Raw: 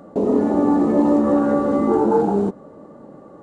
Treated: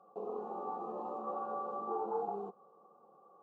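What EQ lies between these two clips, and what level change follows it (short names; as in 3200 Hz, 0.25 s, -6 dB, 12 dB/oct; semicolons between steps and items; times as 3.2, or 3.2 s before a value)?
vowel filter a; fixed phaser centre 420 Hz, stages 8; -3.5 dB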